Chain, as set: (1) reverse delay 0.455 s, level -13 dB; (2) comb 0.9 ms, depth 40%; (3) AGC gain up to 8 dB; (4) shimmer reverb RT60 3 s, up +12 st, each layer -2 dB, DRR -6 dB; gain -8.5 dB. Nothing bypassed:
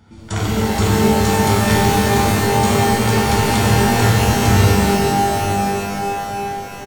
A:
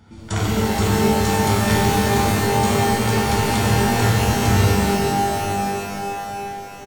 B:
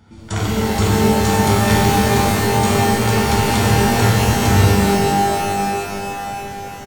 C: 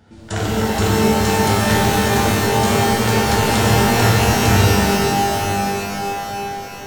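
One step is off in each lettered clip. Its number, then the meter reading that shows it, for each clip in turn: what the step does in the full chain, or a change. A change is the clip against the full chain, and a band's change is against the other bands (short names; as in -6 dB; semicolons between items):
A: 3, momentary loudness spread change +1 LU; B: 1, momentary loudness spread change +2 LU; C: 2, 4 kHz band +2.0 dB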